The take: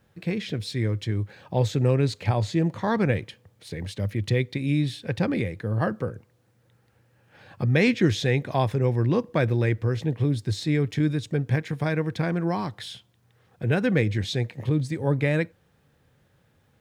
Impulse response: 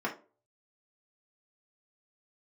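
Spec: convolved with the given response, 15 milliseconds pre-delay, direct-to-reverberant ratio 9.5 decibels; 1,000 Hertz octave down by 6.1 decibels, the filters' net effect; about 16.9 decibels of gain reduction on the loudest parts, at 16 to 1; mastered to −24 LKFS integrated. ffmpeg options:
-filter_complex "[0:a]equalizer=frequency=1000:width_type=o:gain=-8.5,acompressor=threshold=-34dB:ratio=16,asplit=2[link_01][link_02];[1:a]atrim=start_sample=2205,adelay=15[link_03];[link_02][link_03]afir=irnorm=-1:irlink=0,volume=-16.5dB[link_04];[link_01][link_04]amix=inputs=2:normalize=0,volume=15.5dB"

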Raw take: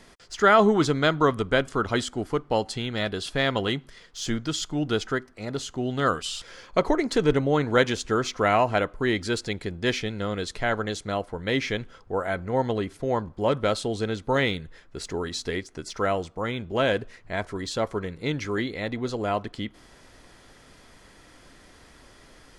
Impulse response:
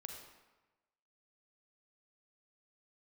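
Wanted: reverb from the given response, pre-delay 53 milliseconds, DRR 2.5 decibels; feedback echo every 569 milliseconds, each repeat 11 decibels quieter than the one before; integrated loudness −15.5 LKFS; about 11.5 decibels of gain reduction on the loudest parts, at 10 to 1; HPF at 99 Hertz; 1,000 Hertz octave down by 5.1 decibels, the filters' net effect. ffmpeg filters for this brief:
-filter_complex "[0:a]highpass=99,equalizer=frequency=1000:width_type=o:gain=-7.5,acompressor=threshold=-28dB:ratio=10,aecho=1:1:569|1138|1707:0.282|0.0789|0.0221,asplit=2[link_01][link_02];[1:a]atrim=start_sample=2205,adelay=53[link_03];[link_02][link_03]afir=irnorm=-1:irlink=0,volume=1.5dB[link_04];[link_01][link_04]amix=inputs=2:normalize=0,volume=16dB"

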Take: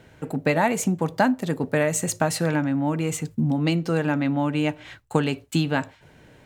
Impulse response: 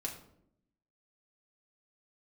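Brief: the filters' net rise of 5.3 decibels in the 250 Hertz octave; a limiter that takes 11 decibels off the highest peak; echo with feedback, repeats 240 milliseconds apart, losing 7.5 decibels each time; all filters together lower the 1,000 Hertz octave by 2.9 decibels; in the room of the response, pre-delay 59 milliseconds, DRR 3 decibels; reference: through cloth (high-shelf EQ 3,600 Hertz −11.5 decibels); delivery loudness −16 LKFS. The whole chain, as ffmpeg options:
-filter_complex "[0:a]equalizer=frequency=250:width_type=o:gain=7,equalizer=frequency=1000:width_type=o:gain=-3.5,alimiter=limit=-14.5dB:level=0:latency=1,aecho=1:1:240|480|720|960|1200:0.422|0.177|0.0744|0.0312|0.0131,asplit=2[link_01][link_02];[1:a]atrim=start_sample=2205,adelay=59[link_03];[link_02][link_03]afir=irnorm=-1:irlink=0,volume=-3dB[link_04];[link_01][link_04]amix=inputs=2:normalize=0,highshelf=frequency=3600:gain=-11.5,volume=4dB"

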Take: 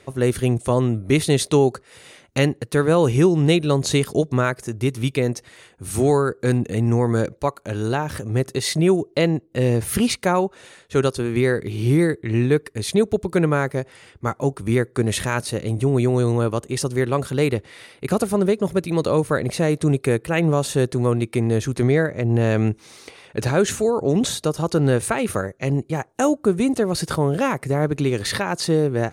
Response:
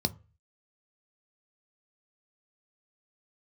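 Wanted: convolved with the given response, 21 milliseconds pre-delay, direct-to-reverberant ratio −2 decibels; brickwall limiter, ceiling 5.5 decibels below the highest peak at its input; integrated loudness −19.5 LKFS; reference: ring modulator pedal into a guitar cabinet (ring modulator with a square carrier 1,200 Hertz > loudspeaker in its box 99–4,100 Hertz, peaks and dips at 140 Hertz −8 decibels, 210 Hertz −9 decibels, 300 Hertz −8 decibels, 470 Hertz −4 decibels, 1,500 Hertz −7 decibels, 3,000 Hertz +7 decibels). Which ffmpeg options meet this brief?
-filter_complex "[0:a]alimiter=limit=-11dB:level=0:latency=1,asplit=2[link_01][link_02];[1:a]atrim=start_sample=2205,adelay=21[link_03];[link_02][link_03]afir=irnorm=-1:irlink=0,volume=-3.5dB[link_04];[link_01][link_04]amix=inputs=2:normalize=0,aeval=exprs='val(0)*sgn(sin(2*PI*1200*n/s))':channel_layout=same,highpass=99,equalizer=frequency=140:width_type=q:width=4:gain=-8,equalizer=frequency=210:width_type=q:width=4:gain=-9,equalizer=frequency=300:width_type=q:width=4:gain=-8,equalizer=frequency=470:width_type=q:width=4:gain=-4,equalizer=frequency=1500:width_type=q:width=4:gain=-7,equalizer=frequency=3000:width_type=q:width=4:gain=7,lowpass=frequency=4100:width=0.5412,lowpass=frequency=4100:width=1.3066,volume=-7.5dB"

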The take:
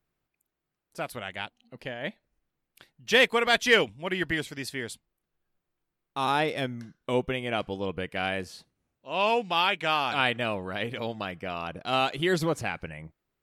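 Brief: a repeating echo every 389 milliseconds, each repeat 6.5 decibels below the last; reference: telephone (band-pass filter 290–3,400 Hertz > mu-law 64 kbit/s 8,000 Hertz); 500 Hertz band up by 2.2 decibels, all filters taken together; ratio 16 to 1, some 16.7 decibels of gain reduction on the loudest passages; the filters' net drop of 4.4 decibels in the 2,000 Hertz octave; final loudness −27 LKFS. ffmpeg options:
ffmpeg -i in.wav -af "equalizer=frequency=500:width_type=o:gain=3.5,equalizer=frequency=2000:width_type=o:gain=-5,acompressor=threshold=-32dB:ratio=16,highpass=290,lowpass=3400,aecho=1:1:389|778|1167|1556|1945|2334:0.473|0.222|0.105|0.0491|0.0231|0.0109,volume=11.5dB" -ar 8000 -c:a pcm_mulaw out.wav

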